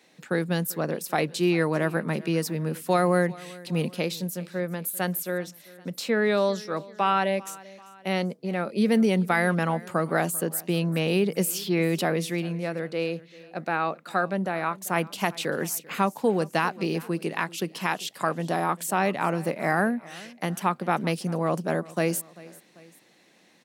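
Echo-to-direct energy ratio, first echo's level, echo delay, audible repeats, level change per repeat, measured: -20.0 dB, -21.0 dB, 0.392 s, 2, -5.5 dB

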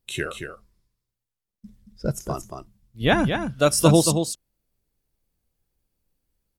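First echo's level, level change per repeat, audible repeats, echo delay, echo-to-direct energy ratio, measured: -7.0 dB, no steady repeat, 1, 0.227 s, -7.0 dB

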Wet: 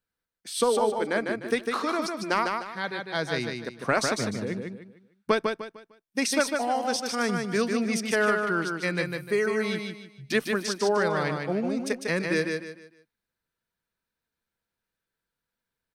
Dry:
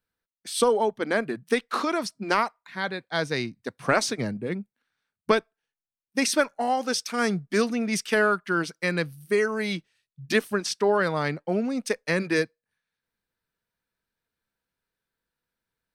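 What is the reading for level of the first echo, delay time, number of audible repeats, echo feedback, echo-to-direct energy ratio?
-4.5 dB, 0.151 s, 4, 32%, -4.0 dB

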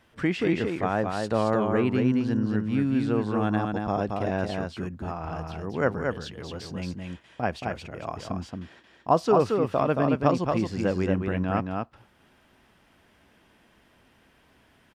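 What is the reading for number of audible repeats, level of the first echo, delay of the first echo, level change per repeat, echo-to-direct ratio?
1, -4.0 dB, 0.225 s, no steady repeat, -4.0 dB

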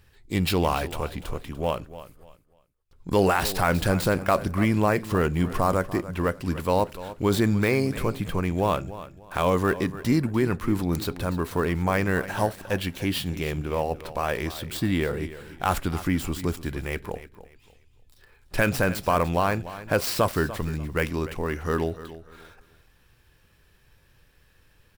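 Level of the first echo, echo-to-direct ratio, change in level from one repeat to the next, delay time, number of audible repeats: -15.0 dB, -14.5 dB, -11.5 dB, 0.294 s, 2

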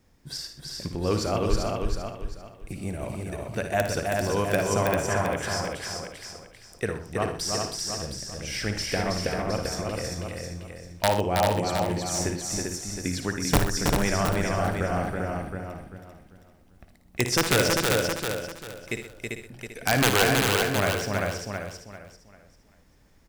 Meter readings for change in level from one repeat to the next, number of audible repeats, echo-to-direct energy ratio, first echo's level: no steady repeat, 15, 1.0 dB, -9.0 dB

